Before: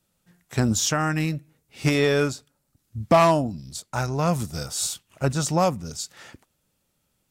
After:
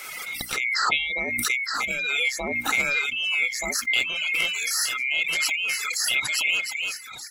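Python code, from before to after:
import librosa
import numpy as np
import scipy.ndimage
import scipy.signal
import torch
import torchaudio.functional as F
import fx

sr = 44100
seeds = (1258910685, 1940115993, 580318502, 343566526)

y = fx.band_swap(x, sr, width_hz=2000)
y = fx.lowpass(y, sr, hz=fx.line((0.73, 3800.0), (1.37, 2000.0)), slope=12, at=(0.73, 1.37), fade=0.02)
y = fx.echo_swing(y, sr, ms=1228, ratio=3, feedback_pct=41, wet_db=-6.5)
y = fx.over_compress(y, sr, threshold_db=-23.0, ratio=-0.5)
y = fx.peak_eq(y, sr, hz=1300.0, db=12.5, octaves=0.21)
y = fx.dereverb_blind(y, sr, rt60_s=0.64)
y = fx.low_shelf(y, sr, hz=120.0, db=-6.0)
y = fx.dereverb_blind(y, sr, rt60_s=1.4)
y = fx.hum_notches(y, sr, base_hz=60, count=5)
y = fx.pre_swell(y, sr, db_per_s=22.0)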